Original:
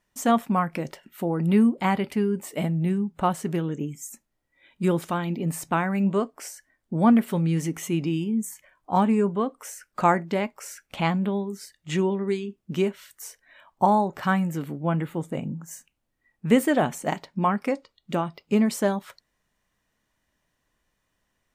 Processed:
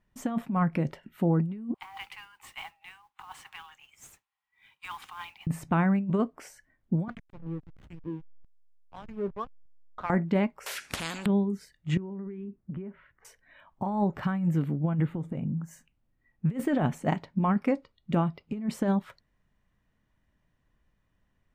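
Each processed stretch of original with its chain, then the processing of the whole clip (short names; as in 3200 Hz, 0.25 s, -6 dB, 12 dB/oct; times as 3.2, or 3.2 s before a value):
1.74–5.47 rippled Chebyshev high-pass 760 Hz, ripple 6 dB + negative-ratio compressor -38 dBFS + modulation noise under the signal 12 dB
7.08–10.1 echo 0.542 s -23 dB + wah 1.7 Hz 470–3600 Hz, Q 2.4 + backlash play -34 dBFS
10.66–11.26 weighting filter ITU-R 468 + spectral compressor 10:1
11.97–13.25 LPF 2000 Hz 24 dB/oct + compressor 10:1, threshold -37 dBFS
15.05–15.64 high shelf 5200 Hz -6 dB + compressor 10:1, threshold -31 dBFS
whole clip: tone controls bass +10 dB, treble -11 dB; negative-ratio compressor -19 dBFS, ratio -0.5; gain -5.5 dB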